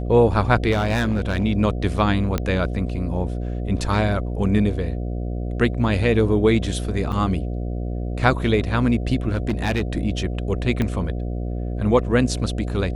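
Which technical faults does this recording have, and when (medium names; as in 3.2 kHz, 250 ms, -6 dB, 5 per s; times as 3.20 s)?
buzz 60 Hz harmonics 12 -26 dBFS
0.71–1.45 s: clipped -16.5 dBFS
2.38 s: pop -9 dBFS
7.12–7.13 s: dropout 5.7 ms
9.30–9.82 s: clipped -17 dBFS
10.82 s: pop -11 dBFS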